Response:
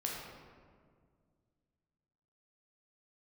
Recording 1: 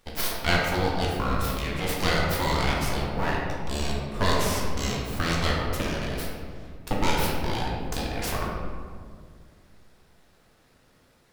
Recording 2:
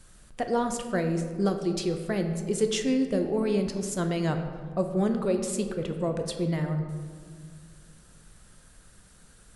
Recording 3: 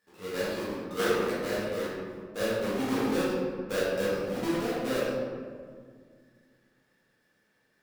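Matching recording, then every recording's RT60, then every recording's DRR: 1; 1.9 s, 2.0 s, 1.9 s; -3.0 dB, 5.5 dB, -10.5 dB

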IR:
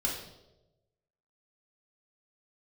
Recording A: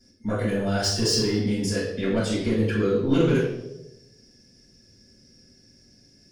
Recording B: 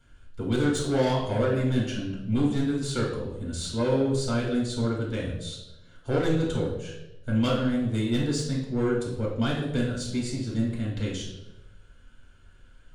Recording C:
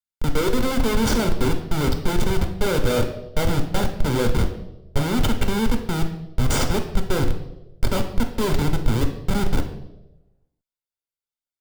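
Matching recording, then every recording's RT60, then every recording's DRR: B; 1.0 s, 1.0 s, 1.0 s; -11.0 dB, -3.5 dB, 4.5 dB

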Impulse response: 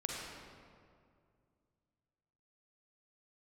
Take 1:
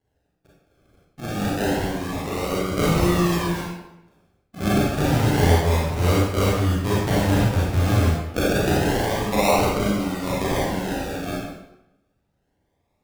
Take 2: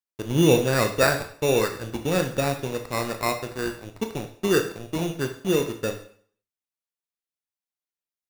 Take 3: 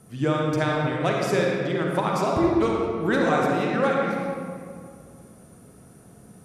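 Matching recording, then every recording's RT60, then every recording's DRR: 3; 0.85 s, 0.55 s, 2.3 s; -6.0 dB, 5.5 dB, -2.5 dB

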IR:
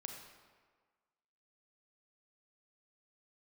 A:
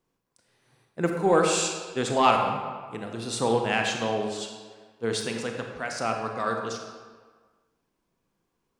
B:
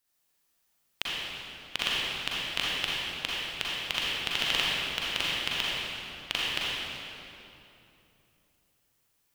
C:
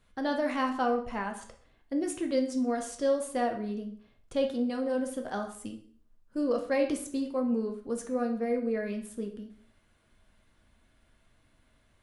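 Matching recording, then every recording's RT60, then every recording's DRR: A; 1.6 s, 2.9 s, 0.50 s; 2.5 dB, -7.0 dB, 3.5 dB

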